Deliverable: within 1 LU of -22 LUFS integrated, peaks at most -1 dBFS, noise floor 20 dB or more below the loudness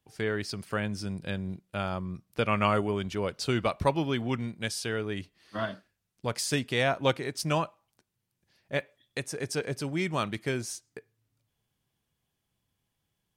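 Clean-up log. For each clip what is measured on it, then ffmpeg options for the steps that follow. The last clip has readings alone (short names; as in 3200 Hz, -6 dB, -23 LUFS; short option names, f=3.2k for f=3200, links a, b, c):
loudness -31.0 LUFS; peak -11.0 dBFS; loudness target -22.0 LUFS
-> -af "volume=9dB"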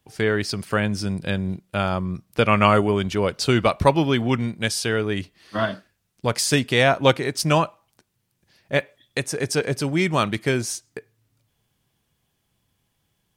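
loudness -22.0 LUFS; peak -2.0 dBFS; noise floor -73 dBFS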